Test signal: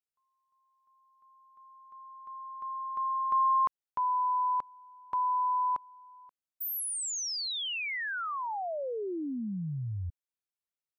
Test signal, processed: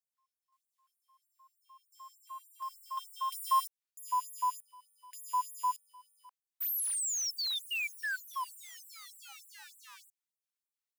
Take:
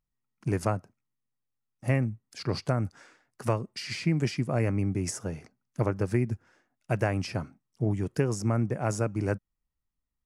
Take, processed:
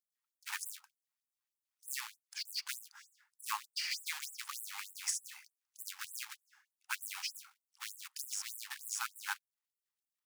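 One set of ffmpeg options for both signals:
-af "acrusher=bits=3:mode=log:mix=0:aa=0.000001,afftfilt=real='re*gte(b*sr/1024,740*pow(7700/740,0.5+0.5*sin(2*PI*3.3*pts/sr)))':imag='im*gte(b*sr/1024,740*pow(7700/740,0.5+0.5*sin(2*PI*3.3*pts/sr)))':win_size=1024:overlap=0.75"

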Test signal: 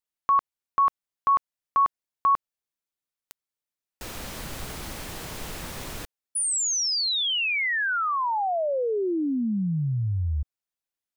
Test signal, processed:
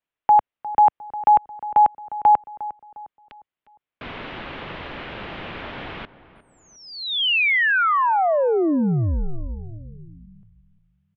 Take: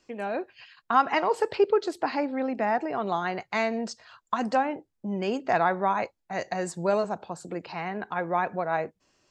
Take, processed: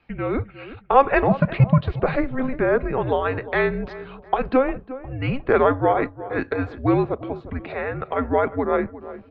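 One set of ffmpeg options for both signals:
-filter_complex "[0:a]asubboost=boost=10.5:cutoff=54,highpass=f=260:t=q:w=0.5412,highpass=f=260:t=q:w=1.307,lowpass=f=3.5k:t=q:w=0.5176,lowpass=f=3.5k:t=q:w=0.7071,lowpass=f=3.5k:t=q:w=1.932,afreqshift=-270,asplit=2[a][b];[b]adelay=355,lowpass=f=1.5k:p=1,volume=-15dB,asplit=2[c][d];[d]adelay=355,lowpass=f=1.5k:p=1,volume=0.44,asplit=2[e][f];[f]adelay=355,lowpass=f=1.5k:p=1,volume=0.44,asplit=2[g][h];[h]adelay=355,lowpass=f=1.5k:p=1,volume=0.44[i];[a][c][e][g][i]amix=inputs=5:normalize=0,volume=7dB"

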